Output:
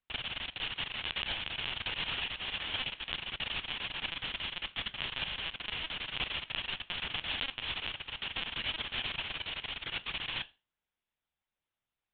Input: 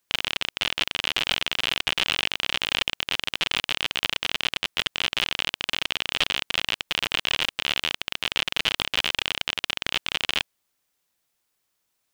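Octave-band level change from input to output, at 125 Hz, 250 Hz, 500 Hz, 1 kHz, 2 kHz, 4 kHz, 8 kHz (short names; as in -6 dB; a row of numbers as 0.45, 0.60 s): -5.0 dB, -9.0 dB, -11.5 dB, -10.0 dB, -10.0 dB, -10.5 dB, under -40 dB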